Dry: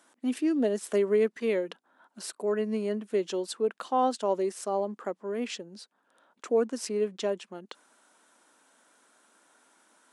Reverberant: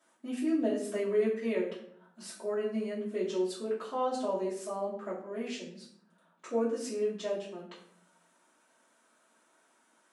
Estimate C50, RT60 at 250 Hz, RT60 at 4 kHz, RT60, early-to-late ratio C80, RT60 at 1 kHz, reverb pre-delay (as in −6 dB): 6.0 dB, 1.1 s, 0.40 s, 0.60 s, 9.5 dB, 0.55 s, 3 ms